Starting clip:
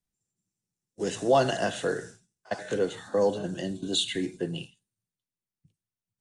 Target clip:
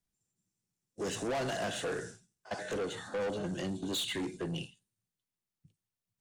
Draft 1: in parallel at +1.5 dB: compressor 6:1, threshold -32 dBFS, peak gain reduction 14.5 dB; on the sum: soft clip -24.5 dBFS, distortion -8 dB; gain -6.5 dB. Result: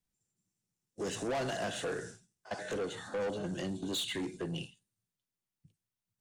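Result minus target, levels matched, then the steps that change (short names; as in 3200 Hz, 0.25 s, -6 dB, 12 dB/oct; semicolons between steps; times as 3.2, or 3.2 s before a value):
compressor: peak gain reduction +6 dB
change: compressor 6:1, threshold -25 dBFS, peak gain reduction 9 dB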